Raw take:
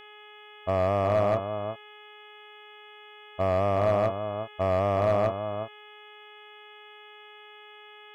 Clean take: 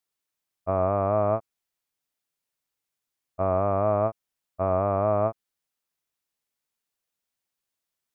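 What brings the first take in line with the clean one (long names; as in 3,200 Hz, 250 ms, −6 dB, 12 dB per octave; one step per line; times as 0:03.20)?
clipped peaks rebuilt −16.5 dBFS
hum removal 420.4 Hz, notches 8
echo removal 360 ms −9 dB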